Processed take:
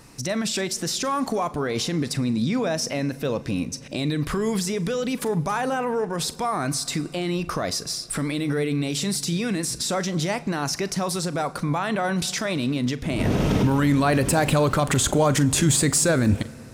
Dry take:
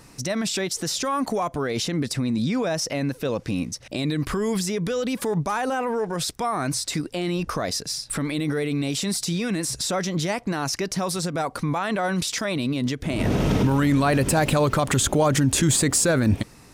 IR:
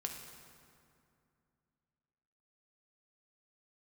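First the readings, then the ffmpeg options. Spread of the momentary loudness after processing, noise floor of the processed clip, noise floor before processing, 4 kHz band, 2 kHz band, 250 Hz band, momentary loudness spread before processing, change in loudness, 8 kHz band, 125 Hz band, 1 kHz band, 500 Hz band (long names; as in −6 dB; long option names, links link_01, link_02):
7 LU, −40 dBFS, −48 dBFS, 0.0 dB, 0.0 dB, 0.0 dB, 7 LU, 0.0 dB, 0.0 dB, +0.5 dB, 0.0 dB, 0.0 dB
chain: -filter_complex "[0:a]asplit=2[link_01][link_02];[1:a]atrim=start_sample=2205,adelay=41[link_03];[link_02][link_03]afir=irnorm=-1:irlink=0,volume=-14dB[link_04];[link_01][link_04]amix=inputs=2:normalize=0"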